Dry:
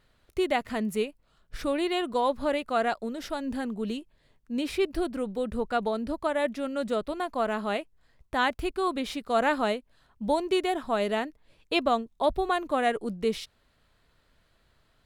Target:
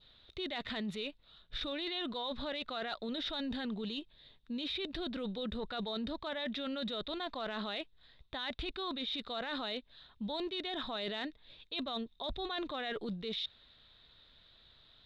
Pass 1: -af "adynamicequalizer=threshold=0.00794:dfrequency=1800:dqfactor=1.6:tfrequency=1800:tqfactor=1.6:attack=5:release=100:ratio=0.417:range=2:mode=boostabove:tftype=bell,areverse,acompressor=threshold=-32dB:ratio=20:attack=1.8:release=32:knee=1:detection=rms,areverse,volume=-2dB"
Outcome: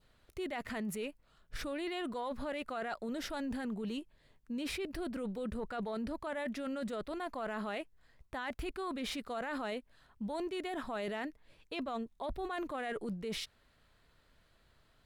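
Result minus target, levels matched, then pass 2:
4000 Hz band -8.0 dB
-af "adynamicequalizer=threshold=0.00794:dfrequency=1800:dqfactor=1.6:tfrequency=1800:tqfactor=1.6:attack=5:release=100:ratio=0.417:range=2:mode=boostabove:tftype=bell,lowpass=f=3.7k:t=q:w=13,areverse,acompressor=threshold=-32dB:ratio=20:attack=1.8:release=32:knee=1:detection=rms,areverse,volume=-2dB"

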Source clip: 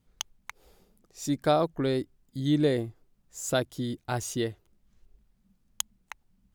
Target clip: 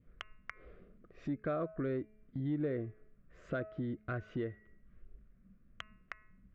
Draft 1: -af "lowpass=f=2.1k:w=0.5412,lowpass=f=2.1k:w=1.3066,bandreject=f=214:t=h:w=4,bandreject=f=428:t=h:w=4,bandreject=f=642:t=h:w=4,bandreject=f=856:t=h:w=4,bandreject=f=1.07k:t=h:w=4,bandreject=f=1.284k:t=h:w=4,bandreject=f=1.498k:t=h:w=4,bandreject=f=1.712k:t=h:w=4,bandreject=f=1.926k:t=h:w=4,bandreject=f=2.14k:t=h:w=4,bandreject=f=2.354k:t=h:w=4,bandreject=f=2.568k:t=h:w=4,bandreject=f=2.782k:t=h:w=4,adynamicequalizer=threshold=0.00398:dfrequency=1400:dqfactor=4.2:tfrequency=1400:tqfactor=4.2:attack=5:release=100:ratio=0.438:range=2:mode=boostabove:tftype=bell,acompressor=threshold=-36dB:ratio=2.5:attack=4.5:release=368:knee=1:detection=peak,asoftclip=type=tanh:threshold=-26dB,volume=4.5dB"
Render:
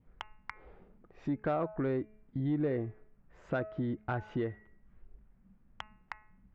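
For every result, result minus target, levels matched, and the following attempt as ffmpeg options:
compressor: peak gain reduction -3 dB; 1000 Hz band +3.0 dB
-af "lowpass=f=2.1k:w=0.5412,lowpass=f=2.1k:w=1.3066,bandreject=f=214:t=h:w=4,bandreject=f=428:t=h:w=4,bandreject=f=642:t=h:w=4,bandreject=f=856:t=h:w=4,bandreject=f=1.07k:t=h:w=4,bandreject=f=1.284k:t=h:w=4,bandreject=f=1.498k:t=h:w=4,bandreject=f=1.712k:t=h:w=4,bandreject=f=1.926k:t=h:w=4,bandreject=f=2.14k:t=h:w=4,bandreject=f=2.354k:t=h:w=4,bandreject=f=2.568k:t=h:w=4,bandreject=f=2.782k:t=h:w=4,adynamicequalizer=threshold=0.00398:dfrequency=1400:dqfactor=4.2:tfrequency=1400:tqfactor=4.2:attack=5:release=100:ratio=0.438:range=2:mode=boostabove:tftype=bell,acompressor=threshold=-43dB:ratio=2.5:attack=4.5:release=368:knee=1:detection=peak,asoftclip=type=tanh:threshold=-26dB,volume=4.5dB"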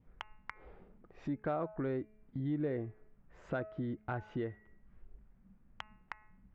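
1000 Hz band +3.5 dB
-af "lowpass=f=2.1k:w=0.5412,lowpass=f=2.1k:w=1.3066,bandreject=f=214:t=h:w=4,bandreject=f=428:t=h:w=4,bandreject=f=642:t=h:w=4,bandreject=f=856:t=h:w=4,bandreject=f=1.07k:t=h:w=4,bandreject=f=1.284k:t=h:w=4,bandreject=f=1.498k:t=h:w=4,bandreject=f=1.712k:t=h:w=4,bandreject=f=1.926k:t=h:w=4,bandreject=f=2.14k:t=h:w=4,bandreject=f=2.354k:t=h:w=4,bandreject=f=2.568k:t=h:w=4,bandreject=f=2.782k:t=h:w=4,adynamicequalizer=threshold=0.00398:dfrequency=1400:dqfactor=4.2:tfrequency=1400:tqfactor=4.2:attack=5:release=100:ratio=0.438:range=2:mode=boostabove:tftype=bell,asuperstop=centerf=860:order=4:qfactor=2.1,acompressor=threshold=-43dB:ratio=2.5:attack=4.5:release=368:knee=1:detection=peak,asoftclip=type=tanh:threshold=-26dB,volume=4.5dB"

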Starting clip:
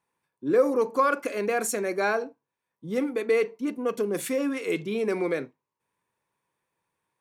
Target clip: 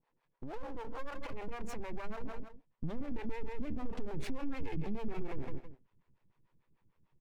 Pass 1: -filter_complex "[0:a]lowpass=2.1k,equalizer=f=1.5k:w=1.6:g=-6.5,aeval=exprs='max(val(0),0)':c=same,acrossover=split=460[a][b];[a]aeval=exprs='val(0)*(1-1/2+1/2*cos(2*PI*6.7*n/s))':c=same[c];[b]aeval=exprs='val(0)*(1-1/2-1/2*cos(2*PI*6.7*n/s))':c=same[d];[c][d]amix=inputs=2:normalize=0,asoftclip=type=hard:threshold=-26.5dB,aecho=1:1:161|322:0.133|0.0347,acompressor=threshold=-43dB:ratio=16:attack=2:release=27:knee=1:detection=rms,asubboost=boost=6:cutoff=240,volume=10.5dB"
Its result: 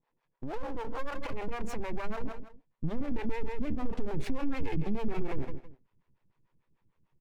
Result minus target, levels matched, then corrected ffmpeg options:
compressor: peak gain reduction -6 dB
-filter_complex "[0:a]lowpass=2.1k,equalizer=f=1.5k:w=1.6:g=-6.5,aeval=exprs='max(val(0),0)':c=same,acrossover=split=460[a][b];[a]aeval=exprs='val(0)*(1-1/2+1/2*cos(2*PI*6.7*n/s))':c=same[c];[b]aeval=exprs='val(0)*(1-1/2-1/2*cos(2*PI*6.7*n/s))':c=same[d];[c][d]amix=inputs=2:normalize=0,asoftclip=type=hard:threshold=-26.5dB,aecho=1:1:161|322:0.133|0.0347,acompressor=threshold=-49.5dB:ratio=16:attack=2:release=27:knee=1:detection=rms,asubboost=boost=6:cutoff=240,volume=10.5dB"

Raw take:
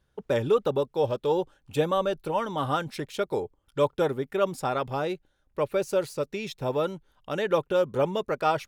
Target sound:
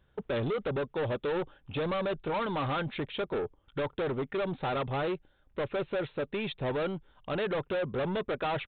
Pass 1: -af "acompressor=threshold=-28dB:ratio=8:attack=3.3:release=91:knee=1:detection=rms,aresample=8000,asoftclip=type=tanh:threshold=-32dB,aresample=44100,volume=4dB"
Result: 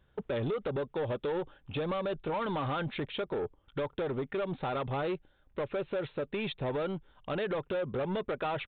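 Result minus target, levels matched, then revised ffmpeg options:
compressor: peak gain reduction +6 dB
-af "acompressor=threshold=-21dB:ratio=8:attack=3.3:release=91:knee=1:detection=rms,aresample=8000,asoftclip=type=tanh:threshold=-32dB,aresample=44100,volume=4dB"

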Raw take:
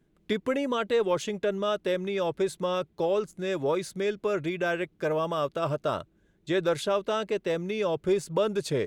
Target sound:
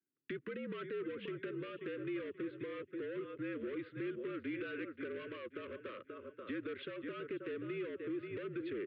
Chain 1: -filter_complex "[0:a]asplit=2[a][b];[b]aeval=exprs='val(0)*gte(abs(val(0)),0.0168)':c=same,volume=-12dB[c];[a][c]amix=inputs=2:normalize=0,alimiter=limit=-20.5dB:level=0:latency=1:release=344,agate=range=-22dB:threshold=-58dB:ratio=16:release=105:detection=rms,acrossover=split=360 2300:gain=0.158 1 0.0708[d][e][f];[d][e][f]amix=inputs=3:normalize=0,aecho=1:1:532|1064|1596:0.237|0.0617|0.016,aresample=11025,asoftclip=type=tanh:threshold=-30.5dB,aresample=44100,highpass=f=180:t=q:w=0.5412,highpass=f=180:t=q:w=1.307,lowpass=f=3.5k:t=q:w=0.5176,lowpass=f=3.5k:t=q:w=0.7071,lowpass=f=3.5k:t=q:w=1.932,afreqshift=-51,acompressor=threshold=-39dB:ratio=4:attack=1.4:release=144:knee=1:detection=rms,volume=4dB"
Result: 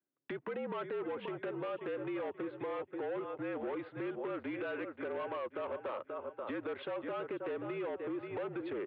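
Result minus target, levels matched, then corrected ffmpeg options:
1000 Hz band +7.5 dB
-filter_complex "[0:a]asplit=2[a][b];[b]aeval=exprs='val(0)*gte(abs(val(0)),0.0168)':c=same,volume=-12dB[c];[a][c]amix=inputs=2:normalize=0,alimiter=limit=-20.5dB:level=0:latency=1:release=344,agate=range=-22dB:threshold=-58dB:ratio=16:release=105:detection=rms,acrossover=split=360 2300:gain=0.158 1 0.0708[d][e][f];[d][e][f]amix=inputs=3:normalize=0,aecho=1:1:532|1064|1596:0.237|0.0617|0.016,aresample=11025,asoftclip=type=tanh:threshold=-30.5dB,aresample=44100,highpass=f=180:t=q:w=0.5412,highpass=f=180:t=q:w=1.307,lowpass=f=3.5k:t=q:w=0.5176,lowpass=f=3.5k:t=q:w=0.7071,lowpass=f=3.5k:t=q:w=1.932,afreqshift=-51,acompressor=threshold=-39dB:ratio=4:attack=1.4:release=144:knee=1:detection=rms,asuperstop=centerf=800:order=4:qfactor=0.77,volume=4dB"

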